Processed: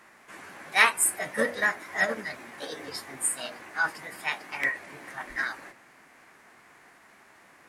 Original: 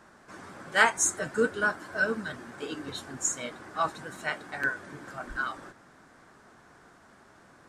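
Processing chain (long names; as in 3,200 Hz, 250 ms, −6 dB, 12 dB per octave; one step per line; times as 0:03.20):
low-shelf EQ 200 Hz −11.5 dB
mains-hum notches 60/120/180/240/300/360/420/480/540/600 Hz
formants moved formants +4 semitones
level +2 dB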